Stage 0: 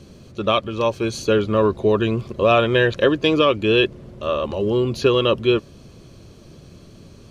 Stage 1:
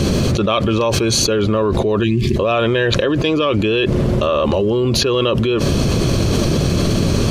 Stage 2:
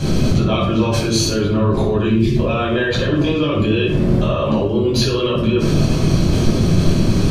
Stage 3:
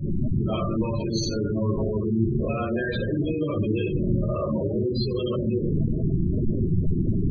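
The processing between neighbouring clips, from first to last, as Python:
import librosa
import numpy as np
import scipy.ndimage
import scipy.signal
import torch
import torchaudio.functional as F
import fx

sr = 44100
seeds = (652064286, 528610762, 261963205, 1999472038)

y1 = fx.spec_box(x, sr, start_s=2.04, length_s=0.32, low_hz=410.0, high_hz=1600.0, gain_db=-23)
y1 = fx.env_flatten(y1, sr, amount_pct=100)
y1 = y1 * 10.0 ** (-3.5 / 20.0)
y2 = fx.room_shoebox(y1, sr, seeds[0], volume_m3=880.0, walls='furnished', distance_m=8.2)
y2 = y2 * 10.0 ** (-12.0 / 20.0)
y3 = fx.echo_split(y2, sr, split_hz=520.0, low_ms=535, high_ms=129, feedback_pct=52, wet_db=-11.0)
y3 = fx.spec_gate(y3, sr, threshold_db=-15, keep='strong')
y3 = y3 * 10.0 ** (-8.5 / 20.0)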